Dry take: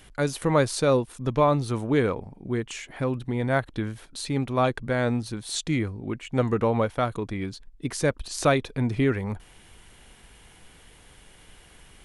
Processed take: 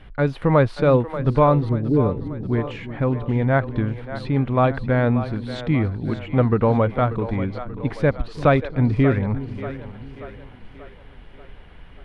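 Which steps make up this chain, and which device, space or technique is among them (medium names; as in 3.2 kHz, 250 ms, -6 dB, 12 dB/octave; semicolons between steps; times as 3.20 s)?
low shelf boost with a cut just above (bass shelf 91 Hz +6 dB; peaking EQ 350 Hz -3 dB 0.53 oct); 1.69–2.36 s: inverse Chebyshev low-pass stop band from 2.7 kHz, stop band 80 dB; distance through air 410 m; two-band feedback delay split 340 Hz, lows 343 ms, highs 585 ms, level -12 dB; trim +6 dB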